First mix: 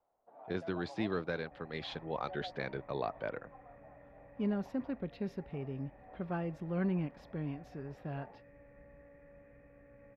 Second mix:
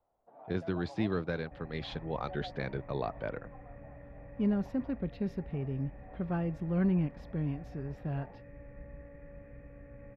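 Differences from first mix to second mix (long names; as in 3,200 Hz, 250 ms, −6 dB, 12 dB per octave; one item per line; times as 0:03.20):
second sound +4.0 dB
master: add low-shelf EQ 180 Hz +11 dB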